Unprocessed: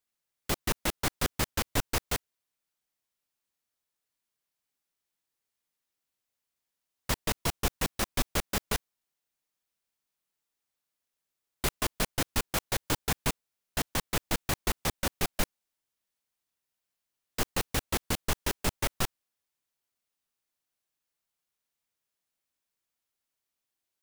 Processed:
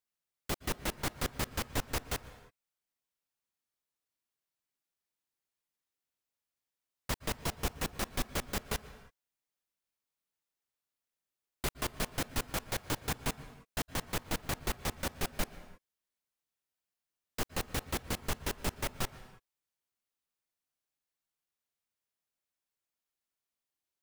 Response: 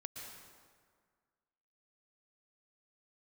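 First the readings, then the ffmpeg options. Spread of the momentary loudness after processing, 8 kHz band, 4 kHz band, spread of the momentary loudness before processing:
5 LU, −6.0 dB, −5.5 dB, 5 LU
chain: -filter_complex "[0:a]asplit=2[link_01][link_02];[1:a]atrim=start_sample=2205,afade=type=out:start_time=0.39:duration=0.01,atrim=end_sample=17640,highshelf=frequency=4300:gain=-11.5[link_03];[link_02][link_03]afir=irnorm=-1:irlink=0,volume=-4dB[link_04];[link_01][link_04]amix=inputs=2:normalize=0,volume=-7dB"

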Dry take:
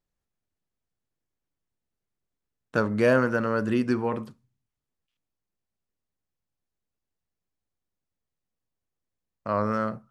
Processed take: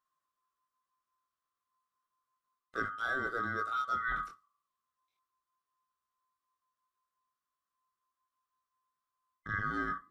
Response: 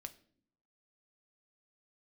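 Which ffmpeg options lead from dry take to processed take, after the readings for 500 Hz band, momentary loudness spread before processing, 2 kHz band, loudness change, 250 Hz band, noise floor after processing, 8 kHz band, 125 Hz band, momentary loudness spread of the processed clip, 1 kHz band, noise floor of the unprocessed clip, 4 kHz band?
−20.0 dB, 12 LU, −2.5 dB, −9.5 dB, −19.0 dB, below −85 dBFS, can't be measured, −15.5 dB, 7 LU, −4.0 dB, below −85 dBFS, −6.0 dB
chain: -af "afftfilt=real='real(if(lt(b,960),b+48*(1-2*mod(floor(b/48),2)),b),0)':imag='imag(if(lt(b,960),b+48*(1-2*mod(floor(b/48),2)),b),0)':win_size=2048:overlap=0.75,areverse,acompressor=threshold=-28dB:ratio=8,areverse,flanger=delay=18:depth=5.8:speed=0.33"

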